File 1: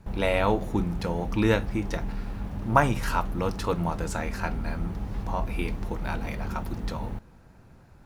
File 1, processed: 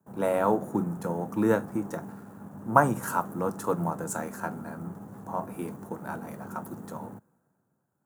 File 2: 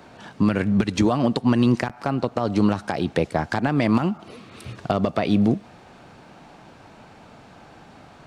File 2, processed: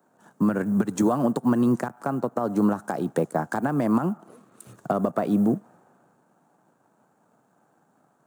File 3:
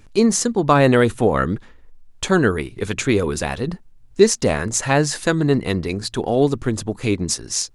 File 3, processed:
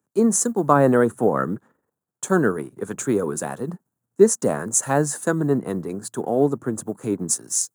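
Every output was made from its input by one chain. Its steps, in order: G.711 law mismatch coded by A; band shelf 3300 Hz -16 dB; in parallel at -2 dB: compressor, threshold -25 dBFS; on the sum: HPF 140 Hz 24 dB/oct; high shelf 7200 Hz +5 dB; three-band expander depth 40%; gain -4 dB

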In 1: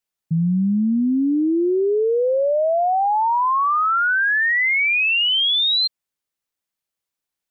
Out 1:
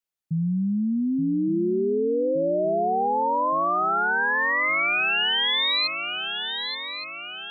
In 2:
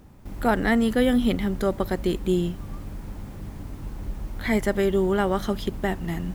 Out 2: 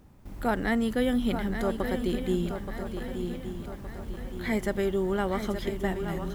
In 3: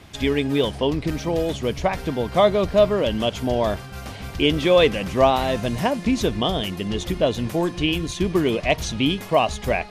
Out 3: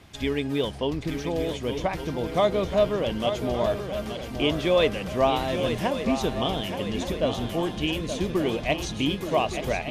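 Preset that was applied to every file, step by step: swung echo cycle 1.167 s, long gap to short 3:1, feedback 47%, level -8.5 dB; gain -5.5 dB

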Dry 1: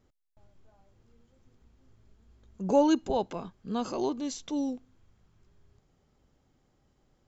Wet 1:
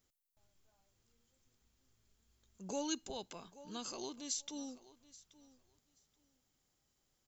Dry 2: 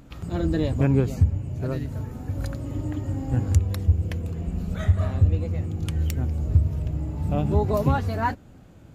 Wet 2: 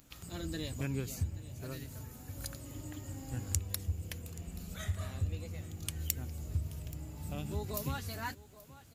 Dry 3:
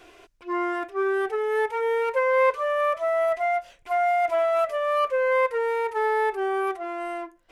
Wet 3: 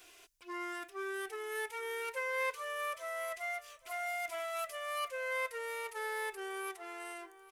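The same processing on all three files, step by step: pre-emphasis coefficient 0.9; on a send: feedback echo 0.829 s, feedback 17%, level -20 dB; on the sum: dynamic EQ 760 Hz, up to -6 dB, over -51 dBFS, Q 1; gain +4 dB

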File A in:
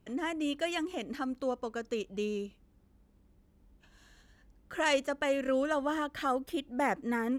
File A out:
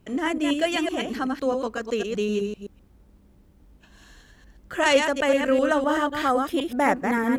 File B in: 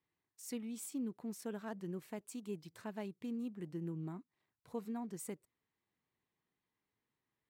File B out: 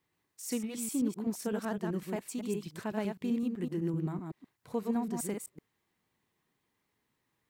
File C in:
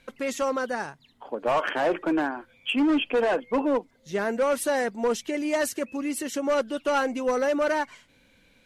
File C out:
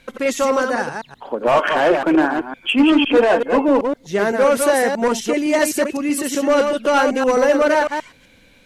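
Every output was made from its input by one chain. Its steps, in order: reverse delay 0.127 s, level -4.5 dB; gain +8 dB

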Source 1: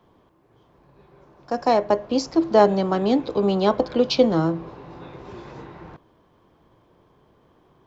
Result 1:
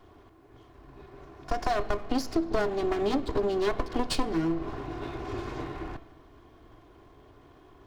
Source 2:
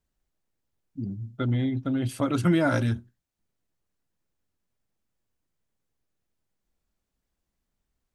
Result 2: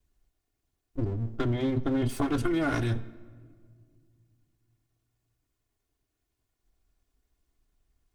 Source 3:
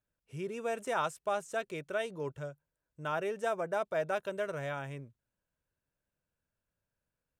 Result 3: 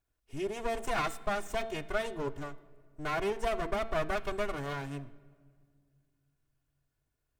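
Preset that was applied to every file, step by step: minimum comb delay 2.8 ms; low shelf 150 Hz +7.5 dB; de-hum 224.7 Hz, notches 19; compressor 6:1, threshold -28 dBFS; shoebox room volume 3400 m³, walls mixed, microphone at 0.31 m; gain +3.5 dB

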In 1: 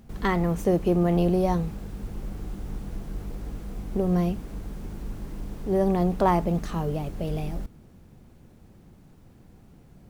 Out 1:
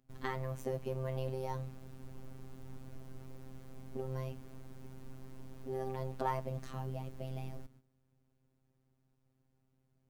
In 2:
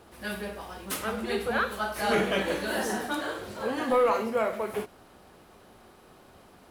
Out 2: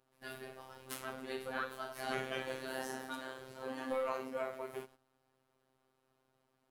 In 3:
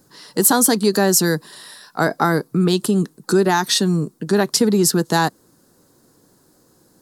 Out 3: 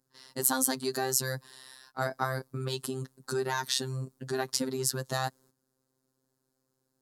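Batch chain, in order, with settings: gate -45 dBFS, range -12 dB; dynamic EQ 320 Hz, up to -7 dB, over -32 dBFS, Q 1.8; robotiser 131 Hz; gain -9.5 dB

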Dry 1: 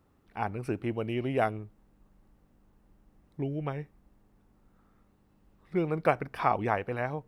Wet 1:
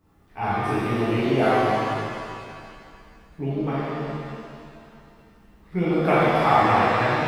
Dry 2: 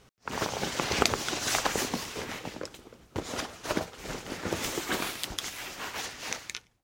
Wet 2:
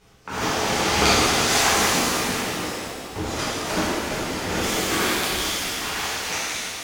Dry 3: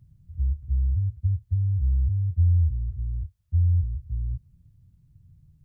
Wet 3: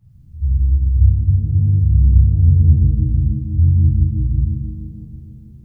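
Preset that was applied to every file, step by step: shimmer reverb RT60 2.3 s, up +7 st, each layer -8 dB, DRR -11.5 dB; gain -2 dB

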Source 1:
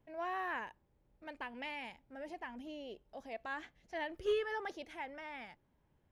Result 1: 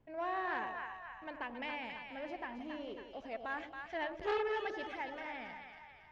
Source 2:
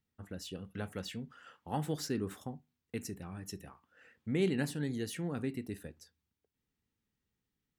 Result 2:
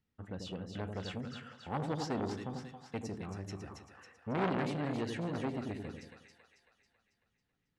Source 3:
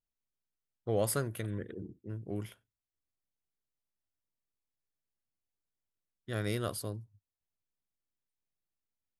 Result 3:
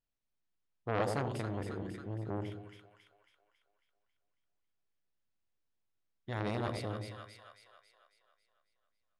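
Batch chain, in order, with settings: air absorption 110 m; split-band echo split 740 Hz, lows 90 ms, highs 0.274 s, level -6 dB; core saturation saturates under 1200 Hz; gain +2.5 dB

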